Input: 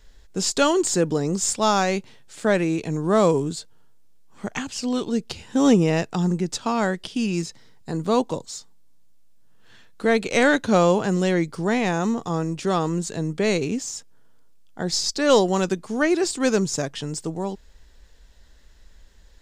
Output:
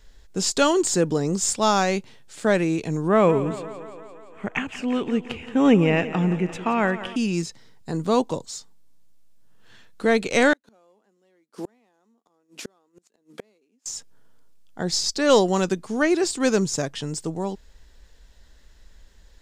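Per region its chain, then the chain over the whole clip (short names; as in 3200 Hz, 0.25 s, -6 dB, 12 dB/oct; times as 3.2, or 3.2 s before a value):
3.08–7.16 resonant high shelf 3400 Hz -10 dB, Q 3 + thinning echo 0.173 s, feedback 70%, high-pass 170 Hz, level -13.5 dB
10.53–13.86 CVSD 64 kbps + Chebyshev high-pass 220 Hz, order 4 + flipped gate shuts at -22 dBFS, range -40 dB
whole clip: dry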